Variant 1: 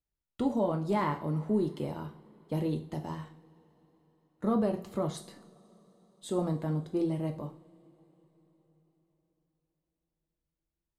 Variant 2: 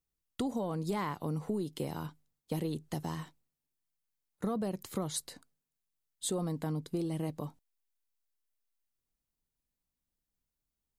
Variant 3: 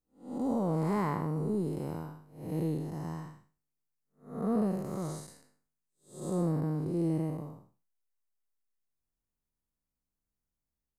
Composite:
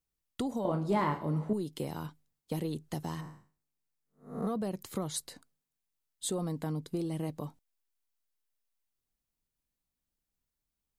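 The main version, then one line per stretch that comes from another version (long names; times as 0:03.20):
2
0:00.65–0:01.53: punch in from 1
0:03.21–0:04.47: punch in from 3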